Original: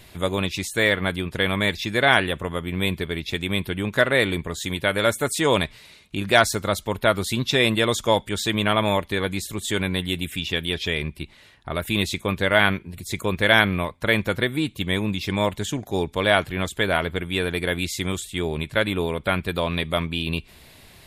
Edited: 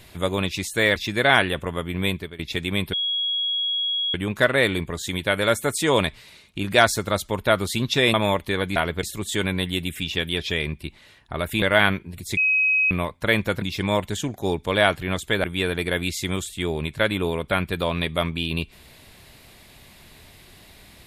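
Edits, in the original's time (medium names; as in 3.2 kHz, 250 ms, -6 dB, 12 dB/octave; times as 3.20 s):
0.96–1.74 s: delete
2.85–3.17 s: fade out, to -18 dB
3.71 s: add tone 3.32 kHz -21.5 dBFS 1.21 s
7.71–8.77 s: delete
11.98–12.42 s: delete
13.17–13.71 s: bleep 2.54 kHz -16.5 dBFS
14.42–15.11 s: delete
16.93–17.20 s: move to 9.39 s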